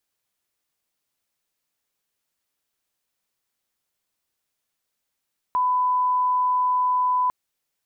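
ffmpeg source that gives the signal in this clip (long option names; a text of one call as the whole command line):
ffmpeg -f lavfi -i "sine=frequency=1000:duration=1.75:sample_rate=44100,volume=0.06dB" out.wav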